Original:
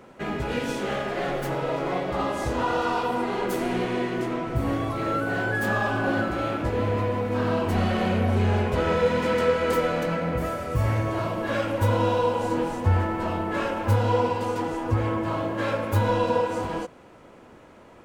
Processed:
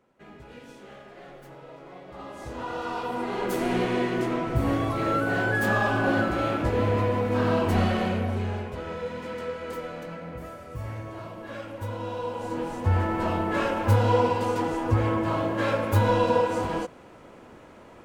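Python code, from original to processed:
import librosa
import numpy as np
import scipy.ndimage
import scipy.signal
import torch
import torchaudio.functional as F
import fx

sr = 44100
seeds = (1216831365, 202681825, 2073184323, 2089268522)

y = fx.gain(x, sr, db=fx.line((1.94, -18.0), (2.52, -10.0), (3.73, 1.0), (7.8, 1.0), (8.8, -11.5), (11.99, -11.5), (13.19, 1.0)))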